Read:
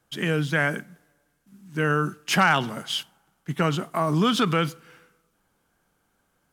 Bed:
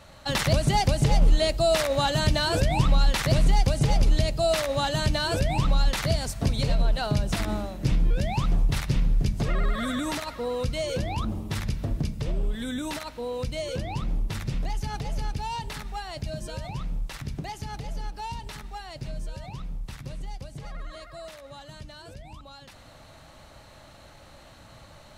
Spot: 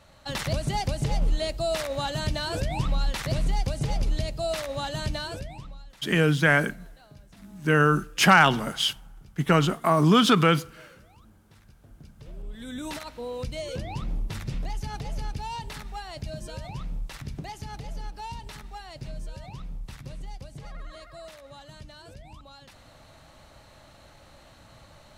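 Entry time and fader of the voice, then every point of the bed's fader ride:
5.90 s, +3.0 dB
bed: 5.19 s -5.5 dB
5.89 s -26 dB
11.79 s -26 dB
12.86 s -2.5 dB

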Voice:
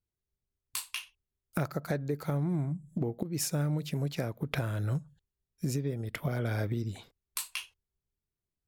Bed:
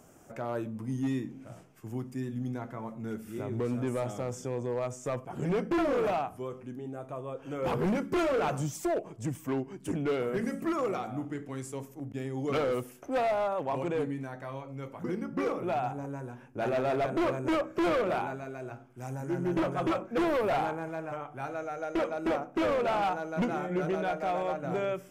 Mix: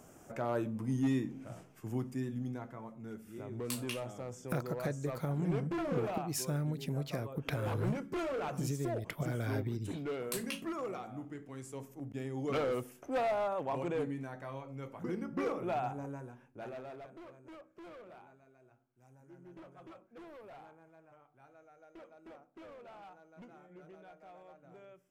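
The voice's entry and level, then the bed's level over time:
2.95 s, -4.5 dB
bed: 2.01 s 0 dB
2.92 s -8.5 dB
11.51 s -8.5 dB
11.95 s -4 dB
16.08 s -4 dB
17.24 s -24 dB

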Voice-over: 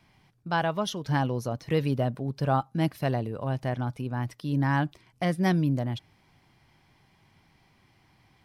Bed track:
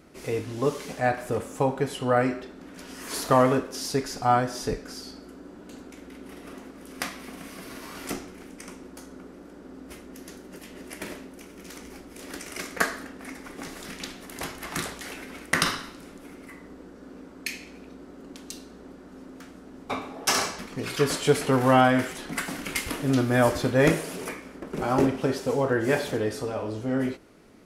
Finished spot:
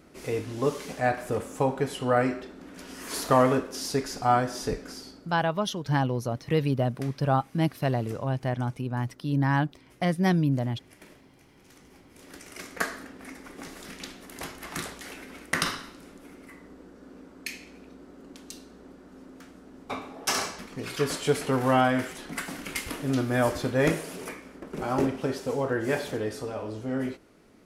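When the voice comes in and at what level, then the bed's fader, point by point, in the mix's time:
4.80 s, +1.0 dB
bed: 4.89 s -1 dB
5.65 s -15 dB
11.5 s -15 dB
12.94 s -3.5 dB

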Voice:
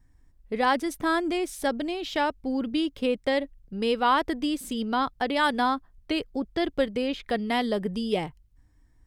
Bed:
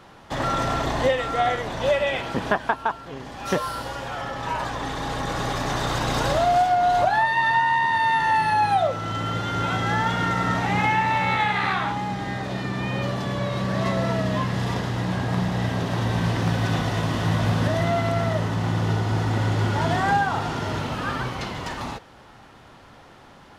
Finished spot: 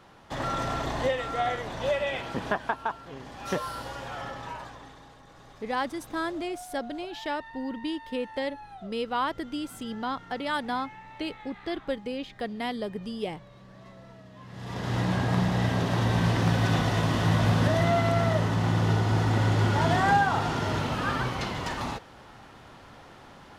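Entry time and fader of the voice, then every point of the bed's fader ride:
5.10 s, -6.0 dB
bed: 4.28 s -6 dB
5.21 s -25.5 dB
14.35 s -25.5 dB
14.94 s -1 dB

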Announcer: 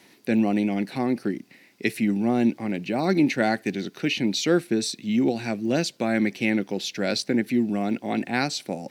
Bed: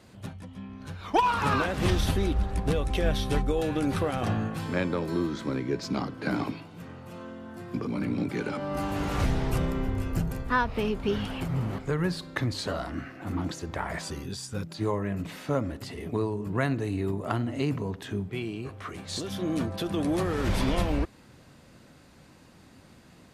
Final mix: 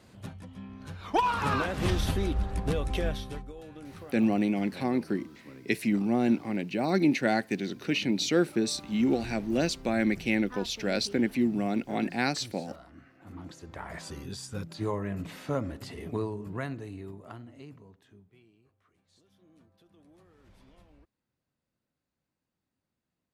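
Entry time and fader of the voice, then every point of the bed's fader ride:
3.85 s, -3.5 dB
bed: 3 s -2.5 dB
3.53 s -18 dB
12.93 s -18 dB
14.31 s -3 dB
16.17 s -3 dB
18.85 s -32.5 dB

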